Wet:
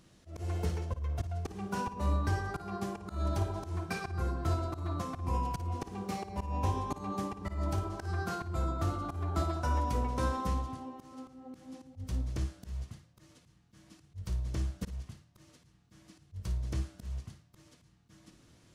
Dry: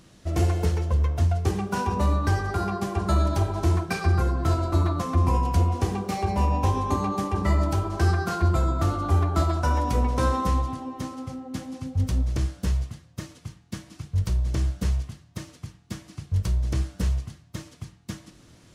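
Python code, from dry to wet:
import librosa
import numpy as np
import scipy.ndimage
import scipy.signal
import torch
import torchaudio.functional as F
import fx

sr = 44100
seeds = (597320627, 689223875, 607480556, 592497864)

y = fx.auto_swell(x, sr, attack_ms=192.0)
y = fx.room_flutter(y, sr, wall_m=9.6, rt60_s=0.27)
y = y * 10.0 ** (-8.5 / 20.0)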